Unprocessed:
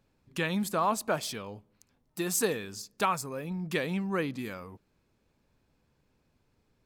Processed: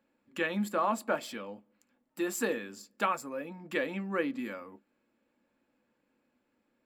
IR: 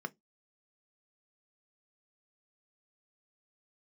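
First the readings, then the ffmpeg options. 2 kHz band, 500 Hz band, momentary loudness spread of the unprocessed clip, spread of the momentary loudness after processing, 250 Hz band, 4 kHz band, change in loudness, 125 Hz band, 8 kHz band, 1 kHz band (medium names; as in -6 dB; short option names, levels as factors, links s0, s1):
0.0 dB, -1.0 dB, 15 LU, 15 LU, -1.5 dB, -6.0 dB, -2.0 dB, -8.5 dB, -8.5 dB, -2.0 dB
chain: -filter_complex "[1:a]atrim=start_sample=2205,asetrate=61740,aresample=44100[s0];[0:a][s0]afir=irnorm=-1:irlink=0"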